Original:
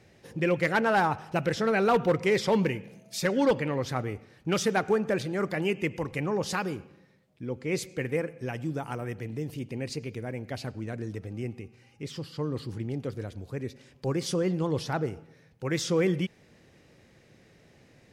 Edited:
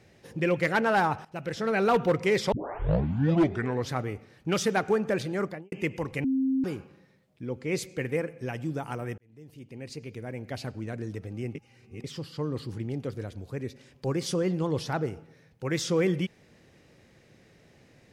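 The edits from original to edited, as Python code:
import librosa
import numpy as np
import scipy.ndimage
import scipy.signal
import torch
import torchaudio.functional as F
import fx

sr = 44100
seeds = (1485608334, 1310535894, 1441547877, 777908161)

y = fx.studio_fade_out(x, sr, start_s=5.37, length_s=0.35)
y = fx.edit(y, sr, fx.fade_in_from(start_s=1.25, length_s=0.58, floor_db=-15.0),
    fx.tape_start(start_s=2.52, length_s=1.36),
    fx.bleep(start_s=6.24, length_s=0.4, hz=265.0, db=-22.5),
    fx.fade_in_span(start_s=9.18, length_s=1.39),
    fx.reverse_span(start_s=11.55, length_s=0.49), tone=tone)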